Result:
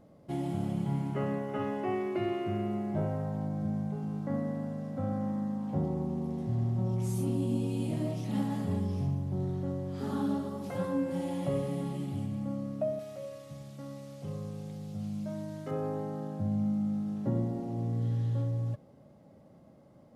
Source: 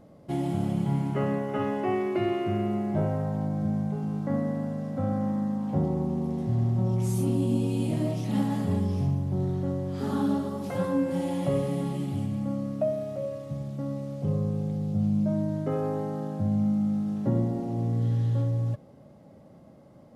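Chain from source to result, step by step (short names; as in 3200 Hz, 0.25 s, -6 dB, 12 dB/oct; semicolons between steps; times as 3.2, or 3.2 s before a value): 12.99–15.71 tilt shelf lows -7 dB, about 1100 Hz; gain -5 dB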